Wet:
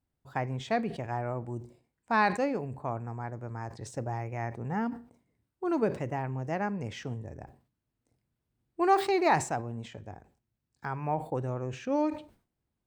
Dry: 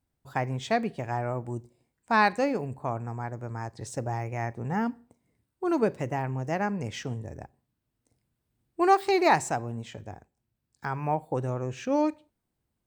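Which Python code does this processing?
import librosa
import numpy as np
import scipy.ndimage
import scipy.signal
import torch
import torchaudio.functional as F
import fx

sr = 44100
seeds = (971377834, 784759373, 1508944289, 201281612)

y = fx.high_shelf(x, sr, hz=4900.0, db=-7.5)
y = fx.sustainer(y, sr, db_per_s=140.0)
y = y * 10.0 ** (-3.0 / 20.0)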